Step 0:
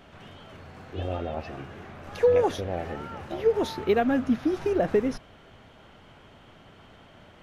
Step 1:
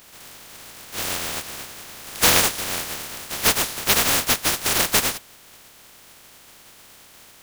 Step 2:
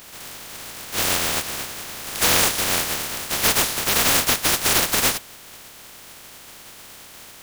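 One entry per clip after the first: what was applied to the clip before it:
spectral contrast reduction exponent 0.12; trim +4 dB
peak limiter -12.5 dBFS, peak gain reduction 11 dB; trim +5.5 dB

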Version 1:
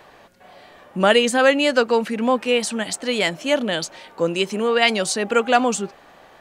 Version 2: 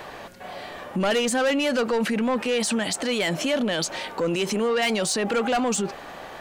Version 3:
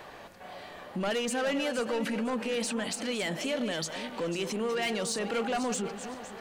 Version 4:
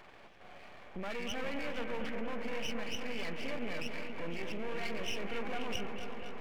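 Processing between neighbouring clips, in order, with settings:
saturation -15.5 dBFS, distortion -11 dB; peak limiter -27 dBFS, peak gain reduction 11.5 dB; reverse; upward compressor, threshold -47 dBFS; reverse; trim +9 dB
backward echo that repeats 256 ms, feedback 55%, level -10 dB; trim -8 dB
knee-point frequency compression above 2.1 kHz 4:1; half-wave rectifier; bucket-brigade echo 235 ms, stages 4096, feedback 81%, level -8 dB; trim -5.5 dB

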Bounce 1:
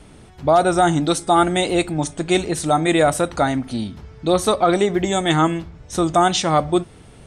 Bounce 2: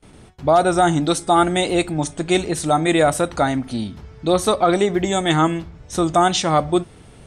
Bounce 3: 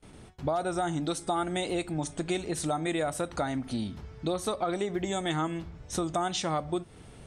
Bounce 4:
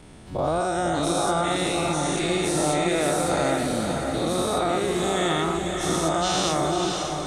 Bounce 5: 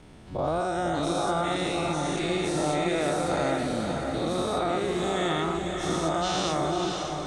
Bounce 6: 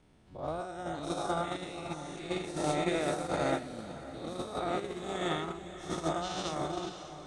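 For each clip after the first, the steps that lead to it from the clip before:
gate with hold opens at -35 dBFS
compression 4:1, threshold -23 dBFS, peak gain reduction 11 dB; trim -5 dB
every event in the spectrogram widened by 240 ms; echo that smears into a reverb 556 ms, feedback 47%, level -4 dB; trim -1 dB
word length cut 10-bit, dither none; distance through air 57 m; trim -3 dB
gate -25 dBFS, range -12 dB; trim -2 dB

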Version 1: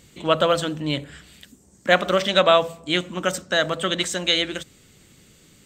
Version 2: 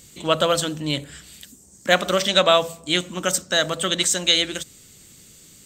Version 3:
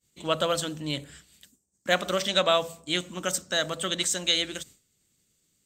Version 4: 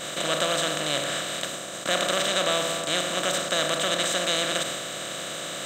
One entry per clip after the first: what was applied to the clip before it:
tone controls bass +1 dB, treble +11 dB; trim -1 dB
expander -37 dBFS; trim -6.5 dB
spectral levelling over time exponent 0.2; trim -7.5 dB

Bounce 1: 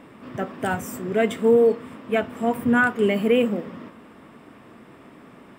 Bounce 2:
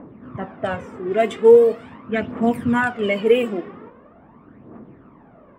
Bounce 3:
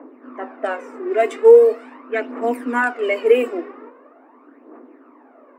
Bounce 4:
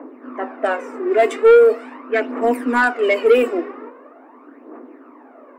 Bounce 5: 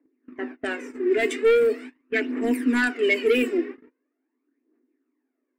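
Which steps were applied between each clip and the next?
phaser 0.42 Hz, delay 2.9 ms, feedback 60%; level-controlled noise filter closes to 980 Hz, open at -13.5 dBFS
Chebyshev high-pass 250 Hz, order 8; peaking EQ 3.3 kHz -12 dB 0.23 oct; trim +2 dB
saturation -10.5 dBFS, distortion -10 dB; trim +4.5 dB
gate -31 dBFS, range -29 dB; high-order bell 820 Hz -15.5 dB

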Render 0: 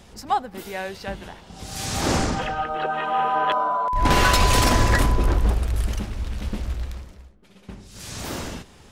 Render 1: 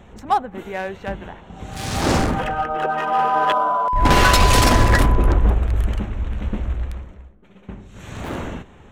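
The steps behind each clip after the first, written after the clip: local Wiener filter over 9 samples; trim +4 dB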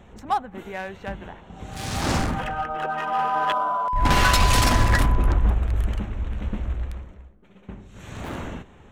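dynamic bell 430 Hz, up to -6 dB, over -32 dBFS, Q 1.2; trim -3.5 dB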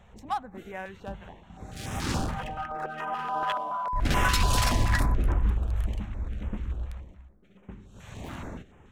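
step-sequenced notch 7 Hz 310–4400 Hz; trim -5 dB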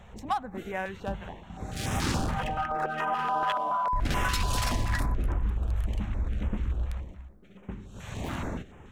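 compression 6:1, threshold -29 dBFS, peak gain reduction 10.5 dB; trim +5 dB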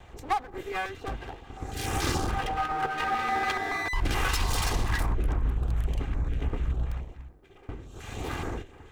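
comb filter that takes the minimum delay 2.5 ms; trim +2 dB

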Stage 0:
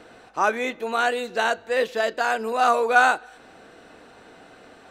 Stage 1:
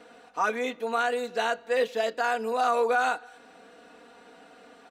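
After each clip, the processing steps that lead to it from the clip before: high-pass 170 Hz 6 dB/octave; comb 4.2 ms, depth 71%; peak limiter -9.5 dBFS, peak gain reduction 8.5 dB; trim -5.5 dB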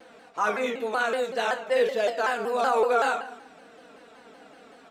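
simulated room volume 250 m³, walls mixed, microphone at 0.61 m; vibrato with a chosen wave saw down 5.3 Hz, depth 160 cents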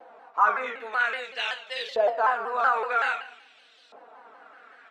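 LFO band-pass saw up 0.51 Hz 760–4300 Hz; trim +7.5 dB

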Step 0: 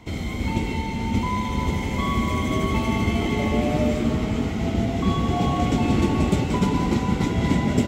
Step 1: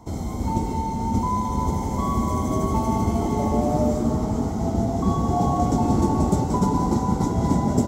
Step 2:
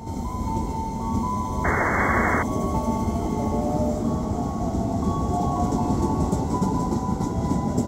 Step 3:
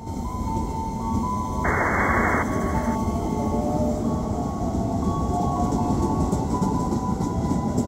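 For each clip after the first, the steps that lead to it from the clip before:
FFT filter 540 Hz 0 dB, 880 Hz +6 dB, 2.6 kHz -20 dB, 5.8 kHz +2 dB
reverse echo 983 ms -7.5 dB; painted sound noise, 1.64–2.43 s, 230–2200 Hz -20 dBFS; trim -3 dB
delay 526 ms -14 dB

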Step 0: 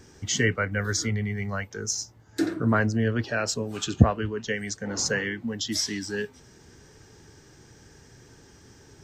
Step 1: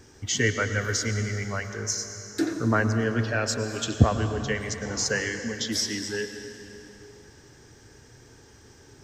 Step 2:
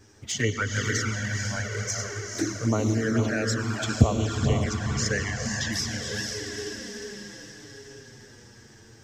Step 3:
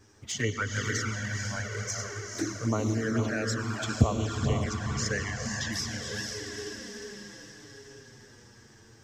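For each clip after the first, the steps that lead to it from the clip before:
peaking EQ 180 Hz -9 dB 0.34 oct; on a send at -7.5 dB: reverberation RT60 3.3 s, pre-delay 92 ms
echo that smears into a reverb 485 ms, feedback 55%, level -3 dB; touch-sensitive flanger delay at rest 10.5 ms, full sweep at -18.5 dBFS
peaking EQ 1.1 kHz +4 dB 0.48 oct; trim -4 dB

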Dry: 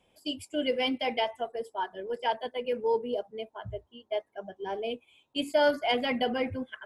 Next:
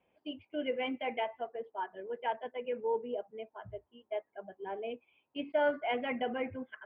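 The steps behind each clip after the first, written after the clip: steep low-pass 2.7 kHz 36 dB/octave; bass shelf 100 Hz -11 dB; trim -5 dB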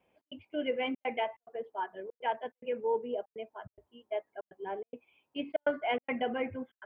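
trance gate "xx.xxxxxx.x" 143 bpm -60 dB; trim +2 dB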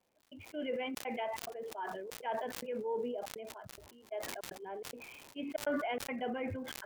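level-controlled noise filter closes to 2.1 kHz, open at -29.5 dBFS; crackle 230 per s -57 dBFS; decay stretcher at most 27 dB/s; trim -6.5 dB

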